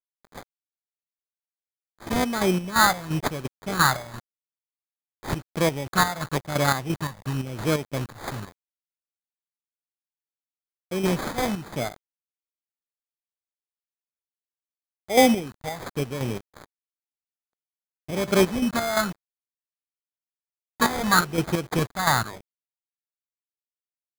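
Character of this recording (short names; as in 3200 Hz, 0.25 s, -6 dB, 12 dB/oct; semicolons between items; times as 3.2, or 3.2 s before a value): a quantiser's noise floor 6-bit, dither none; chopped level 2.9 Hz, depth 60%, duty 50%; phasing stages 4, 0.94 Hz, lowest notch 350–3300 Hz; aliases and images of a low sample rate 2800 Hz, jitter 0%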